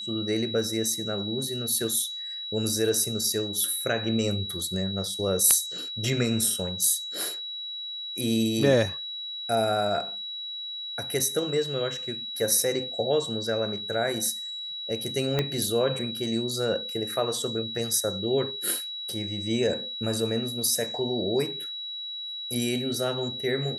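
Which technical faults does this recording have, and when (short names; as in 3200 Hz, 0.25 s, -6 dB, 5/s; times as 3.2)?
tone 3900 Hz -33 dBFS
15.39 pop -11 dBFS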